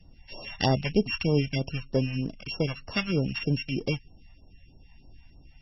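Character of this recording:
a buzz of ramps at a fixed pitch in blocks of 16 samples
phaser sweep stages 2, 3.2 Hz, lowest notch 330–2,400 Hz
MP3

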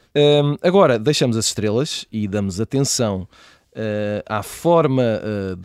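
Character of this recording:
background noise floor −59 dBFS
spectral slope −5.0 dB per octave

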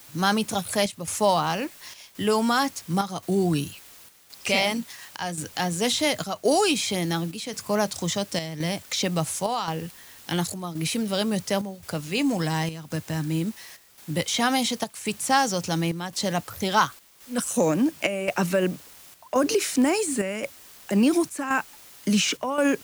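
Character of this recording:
a quantiser's noise floor 8 bits, dither triangular
chopped level 0.93 Hz, depth 60%, duty 80%

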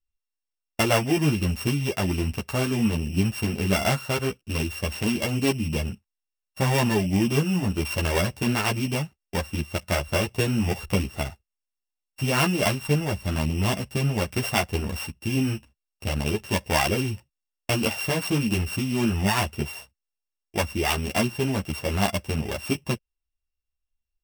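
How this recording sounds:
a buzz of ramps at a fixed pitch in blocks of 16 samples
a shimmering, thickened sound

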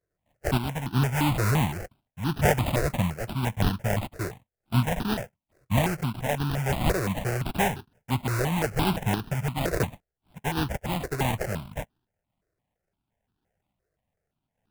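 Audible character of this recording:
sample-and-hold tremolo
aliases and images of a low sample rate 1,200 Hz, jitter 20%
notches that jump at a steady rate 5.8 Hz 860–2,100 Hz

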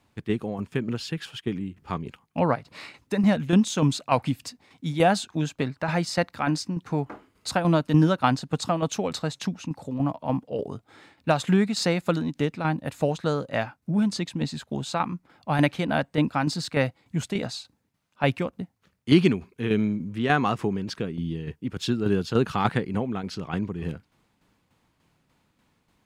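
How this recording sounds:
tremolo saw down 3.4 Hz, depth 55%

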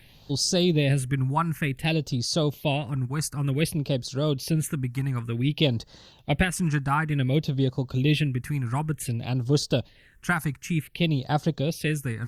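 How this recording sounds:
a quantiser's noise floor 12 bits, dither none
phaser sweep stages 4, 0.55 Hz, lowest notch 520–2,300 Hz
Opus

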